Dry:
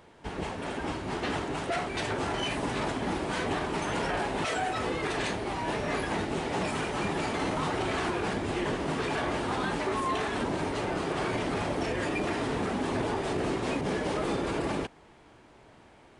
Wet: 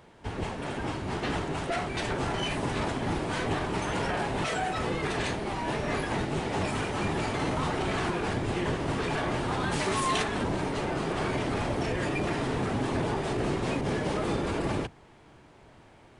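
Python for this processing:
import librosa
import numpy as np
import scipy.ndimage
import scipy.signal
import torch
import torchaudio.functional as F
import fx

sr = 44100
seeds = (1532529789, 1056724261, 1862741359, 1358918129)

y = fx.octave_divider(x, sr, octaves=1, level_db=-1.0)
y = fx.high_shelf(y, sr, hz=fx.line((9.71, 3500.0), (10.22, 2200.0)), db=12.0, at=(9.71, 10.22), fade=0.02)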